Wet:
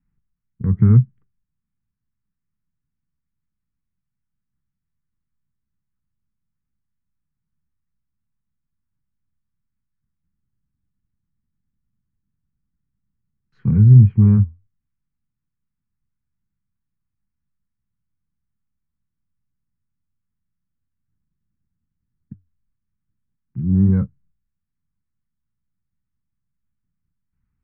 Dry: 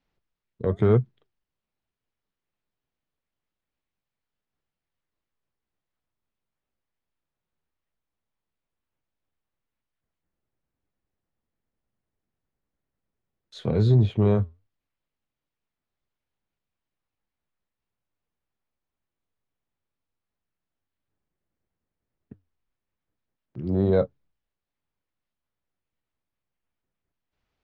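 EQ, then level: air absorption 350 m; resonant low shelf 270 Hz +11 dB, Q 1.5; fixed phaser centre 1500 Hz, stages 4; -1.5 dB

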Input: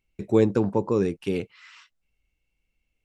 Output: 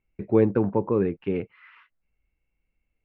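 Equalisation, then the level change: LPF 2300 Hz 24 dB/oct; 0.0 dB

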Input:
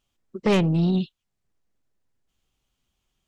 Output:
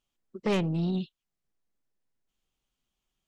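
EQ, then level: bell 81 Hz -12 dB 0.67 oct; -6.5 dB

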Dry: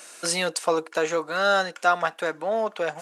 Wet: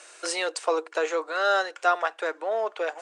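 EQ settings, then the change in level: elliptic band-pass 360–8800 Hz, stop band 40 dB; high shelf 4900 Hz -5 dB; -1.0 dB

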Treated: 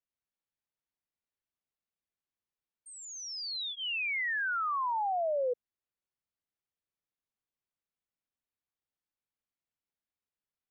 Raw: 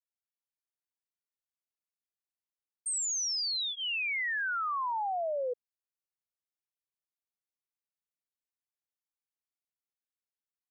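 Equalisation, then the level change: LPF 3600 Hz; low shelf 390 Hz +6.5 dB; 0.0 dB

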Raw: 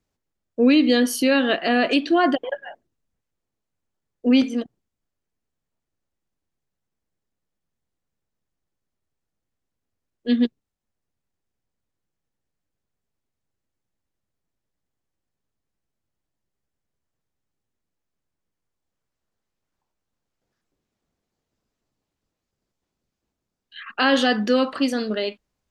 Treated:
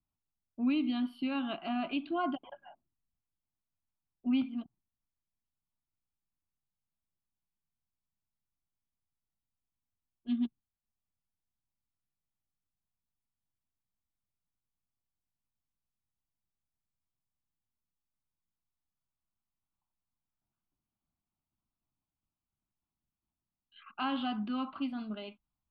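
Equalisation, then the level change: air absorption 420 m; fixed phaser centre 1800 Hz, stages 6; -8.5 dB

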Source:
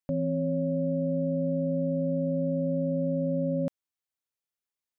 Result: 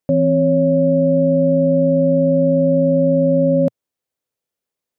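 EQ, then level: ten-band EQ 125 Hz +6 dB, 250 Hz +4 dB, 500 Hz +10 dB; +5.5 dB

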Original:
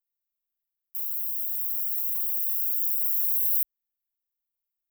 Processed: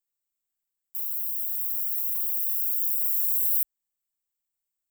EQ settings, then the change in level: bell 7800 Hz +13.5 dB 0.36 oct; 0.0 dB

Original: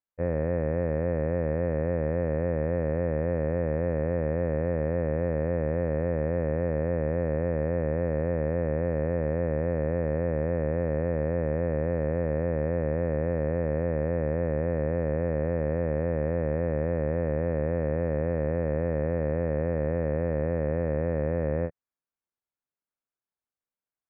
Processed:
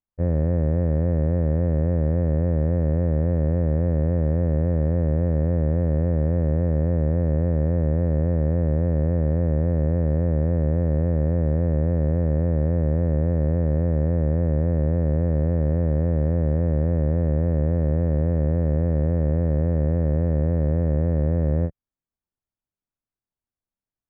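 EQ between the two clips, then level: air absorption 370 m; tilt -3 dB/oct; bell 480 Hz -4.5 dB 0.39 oct; 0.0 dB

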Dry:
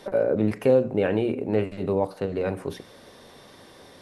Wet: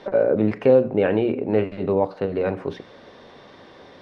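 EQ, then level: air absorption 200 m; low shelf 160 Hz -6 dB; +5.0 dB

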